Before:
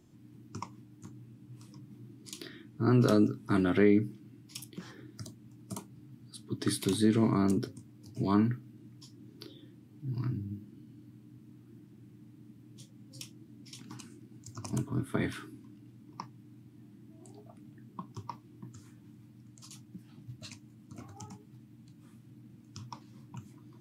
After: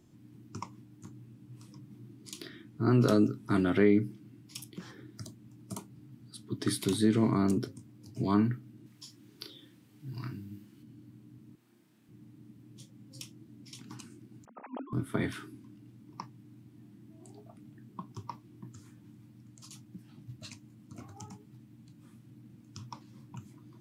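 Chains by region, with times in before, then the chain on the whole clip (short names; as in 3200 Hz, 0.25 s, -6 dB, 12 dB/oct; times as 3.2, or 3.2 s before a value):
8.86–10.83 HPF 46 Hz + tilt shelf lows -6 dB, about 820 Hz + doubler 36 ms -9 dB
11.55–12.09 HPF 1000 Hz 6 dB/oct + flutter echo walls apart 5.5 m, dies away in 0.59 s + core saturation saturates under 260 Hz
14.45–14.93 sine-wave speech + HPF 690 Hz + tilt -4 dB/oct
whole clip: dry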